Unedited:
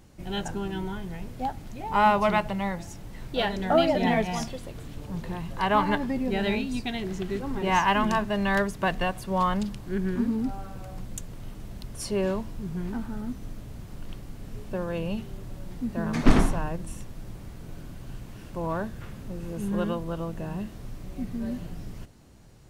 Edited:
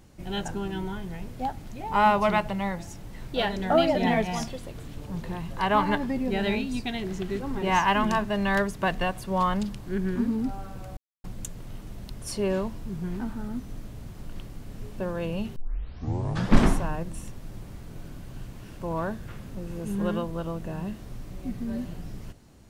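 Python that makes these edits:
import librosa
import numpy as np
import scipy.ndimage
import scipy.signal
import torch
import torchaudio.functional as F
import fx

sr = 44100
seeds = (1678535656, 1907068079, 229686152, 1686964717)

y = fx.edit(x, sr, fx.insert_silence(at_s=10.97, length_s=0.27),
    fx.tape_start(start_s=15.29, length_s=1.13), tone=tone)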